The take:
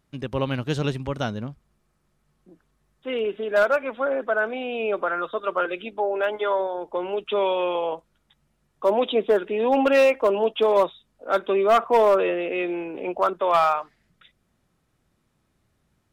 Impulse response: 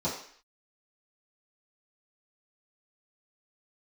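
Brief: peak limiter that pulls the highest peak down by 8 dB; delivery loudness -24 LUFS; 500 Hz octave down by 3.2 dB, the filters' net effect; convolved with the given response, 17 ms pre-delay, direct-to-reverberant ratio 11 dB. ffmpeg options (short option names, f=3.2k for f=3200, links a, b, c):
-filter_complex "[0:a]equalizer=f=500:t=o:g=-4,alimiter=limit=-19dB:level=0:latency=1,asplit=2[a][b];[1:a]atrim=start_sample=2205,adelay=17[c];[b][c]afir=irnorm=-1:irlink=0,volume=-19dB[d];[a][d]amix=inputs=2:normalize=0,volume=4dB"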